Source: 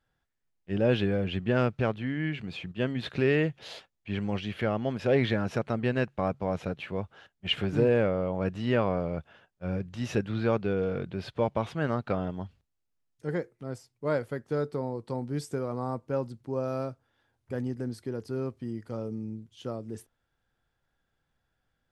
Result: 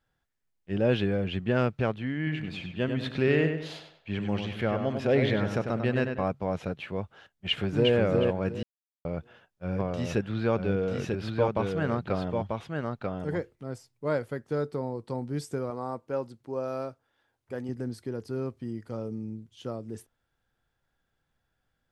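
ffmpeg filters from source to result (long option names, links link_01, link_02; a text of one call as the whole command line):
ffmpeg -i in.wav -filter_complex "[0:a]asettb=1/sr,asplit=3[link_01][link_02][link_03];[link_01]atrim=end=2.174[link_04];[link_02]atrim=start=2.17:end=6.24,asetpts=PTS-STARTPTS,afade=type=in:duration=0.004:curve=qsin,afade=type=out:start_time=4.066:duration=0.004:curve=qsin,asplit=2[link_05][link_06];[link_06]adelay=97,lowpass=frequency=3800:poles=1,volume=-6dB,asplit=2[link_07][link_08];[link_08]adelay=97,lowpass=frequency=3800:poles=1,volume=0.4,asplit=2[link_09][link_10];[link_10]adelay=97,lowpass=frequency=3800:poles=1,volume=0.4,asplit=2[link_11][link_12];[link_12]adelay=97,lowpass=frequency=3800:poles=1,volume=0.4,asplit=2[link_13][link_14];[link_14]adelay=97,lowpass=frequency=3800:poles=1,volume=0.4[link_15];[link_05][link_07][link_09][link_11][link_13][link_15]amix=inputs=6:normalize=0,atrim=end_sample=179487[link_16];[link_03]atrim=start=6.236[link_17];[link_04][link_16]acrossfade=duration=0.004:curve1=hsin:curve2=qsin[link_18];[link_18][link_17]acrossfade=duration=0.004:curve1=qsin:curve2=hsin,asplit=2[link_19][link_20];[link_20]afade=type=in:start_time=7.48:duration=0.01,afade=type=out:start_time=7.94:duration=0.01,aecho=0:1:360|720|1080|1440:0.707946|0.176986|0.0442466|0.0110617[link_21];[link_19][link_21]amix=inputs=2:normalize=0,asplit=3[link_22][link_23][link_24];[link_22]afade=type=out:start_time=9.78:duration=0.02[link_25];[link_23]aecho=1:1:941:0.668,afade=type=in:start_time=9.78:duration=0.02,afade=type=out:start_time=14.05:duration=0.02[link_26];[link_24]afade=type=in:start_time=14.05:duration=0.02[link_27];[link_25][link_26][link_27]amix=inputs=3:normalize=0,asettb=1/sr,asplit=3[link_28][link_29][link_30];[link_28]atrim=end=15.704[link_31];[link_29]atrim=start=15.7:end=17.69,asetpts=PTS-STARTPTS,afade=type=in:duration=0.004:curve=qsin,afade=type=out:start_time=1.986:duration=0.004:curve=qsin,bass=frequency=250:gain=-8,treble=frequency=4000:gain=-1[link_32];[link_30]atrim=start=17.686[link_33];[link_31][link_32]acrossfade=duration=0.004:curve1=hsin:curve2=qsin[link_34];[link_34][link_33]acrossfade=duration=0.004:curve1=qsin:curve2=hsin,asplit=3[link_35][link_36][link_37];[link_35]atrim=end=8.63,asetpts=PTS-STARTPTS,afade=type=out:start_time=8.626:duration=0.004:curve=hsin[link_38];[link_36]atrim=start=8.63:end=9.05,asetpts=PTS-STARTPTS,volume=0[link_39];[link_37]atrim=start=9.05,asetpts=PTS-STARTPTS,afade=type=in:duration=0.004:curve=hsin[link_40];[link_38][link_39][link_40]concat=n=3:v=0:a=1" out.wav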